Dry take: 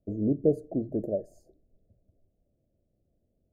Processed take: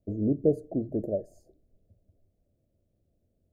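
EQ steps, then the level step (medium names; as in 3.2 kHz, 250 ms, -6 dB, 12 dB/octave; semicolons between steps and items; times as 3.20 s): peaking EQ 91 Hz +5.5 dB 0.34 oct; 0.0 dB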